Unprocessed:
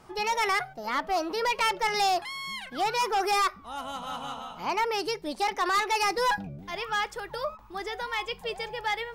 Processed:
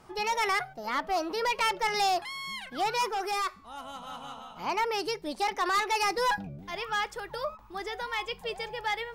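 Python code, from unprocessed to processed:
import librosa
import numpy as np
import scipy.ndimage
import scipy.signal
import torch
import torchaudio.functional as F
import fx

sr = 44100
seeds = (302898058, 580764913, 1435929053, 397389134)

y = fx.comb_fb(x, sr, f0_hz=220.0, decay_s=0.56, harmonics='all', damping=0.0, mix_pct=40, at=(3.08, 4.55), fade=0.02)
y = y * 10.0 ** (-1.5 / 20.0)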